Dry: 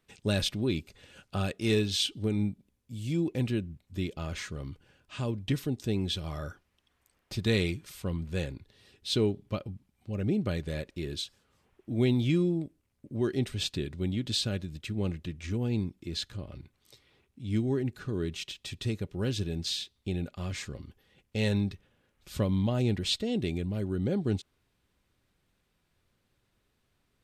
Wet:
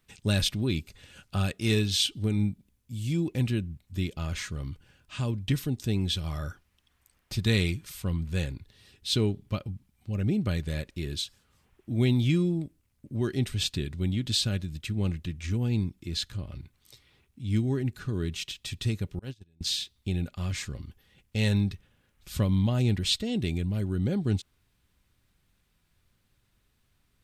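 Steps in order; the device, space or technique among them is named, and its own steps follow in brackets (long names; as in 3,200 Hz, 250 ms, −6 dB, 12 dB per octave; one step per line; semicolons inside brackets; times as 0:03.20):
0:19.19–0:19.61: noise gate −26 dBFS, range −34 dB
smiley-face EQ (low-shelf EQ 110 Hz +5 dB; parametric band 470 Hz −5.5 dB 1.7 octaves; high-shelf EQ 9,200 Hz +5.5 dB)
level +2.5 dB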